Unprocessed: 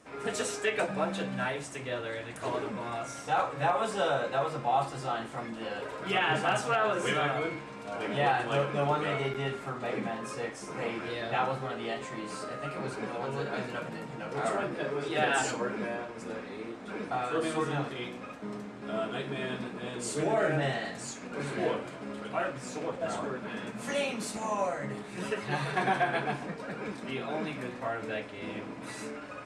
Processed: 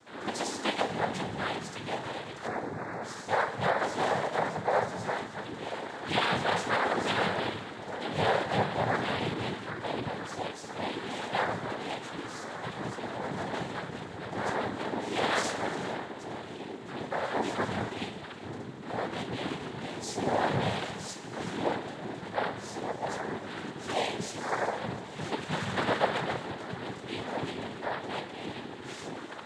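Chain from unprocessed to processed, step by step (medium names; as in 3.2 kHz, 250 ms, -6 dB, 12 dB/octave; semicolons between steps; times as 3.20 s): 2.47–3.03 s: Butterworth band-stop 2.8 kHz, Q 0.64; gated-style reverb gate 480 ms flat, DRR 10 dB; noise-vocoded speech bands 6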